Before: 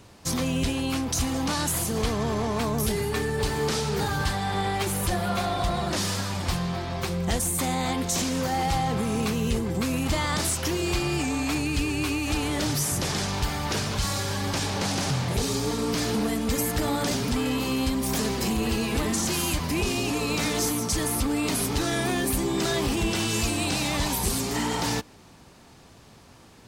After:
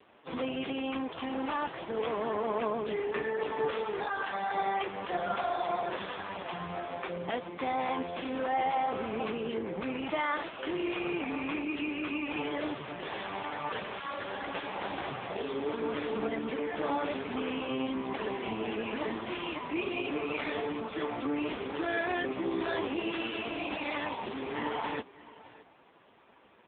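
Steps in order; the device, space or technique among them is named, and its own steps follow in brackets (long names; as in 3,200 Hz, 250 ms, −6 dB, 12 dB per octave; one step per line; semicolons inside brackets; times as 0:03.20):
0:03.65–0:04.97: high-pass filter 180 Hz 6 dB per octave
satellite phone (band-pass filter 360–3,300 Hz; single-tap delay 616 ms −19 dB; AMR narrowband 5.15 kbit/s 8,000 Hz)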